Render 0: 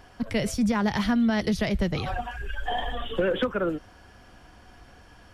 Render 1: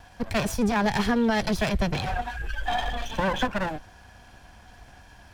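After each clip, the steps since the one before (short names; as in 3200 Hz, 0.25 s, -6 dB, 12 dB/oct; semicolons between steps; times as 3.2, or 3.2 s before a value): minimum comb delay 1.2 ms; gain +2.5 dB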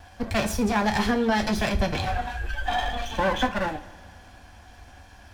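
two-slope reverb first 0.25 s, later 2 s, from -20 dB, DRR 4.5 dB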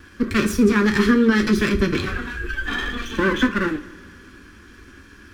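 EQ curve 100 Hz 0 dB, 390 Hz +15 dB, 730 Hz -20 dB, 1200 Hz +9 dB, 3300 Hz +2 dB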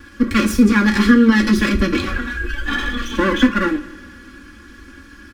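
comb 3.6 ms, depth 77%; gain +1.5 dB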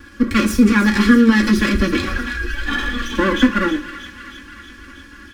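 thin delay 0.318 s, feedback 68%, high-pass 1700 Hz, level -11 dB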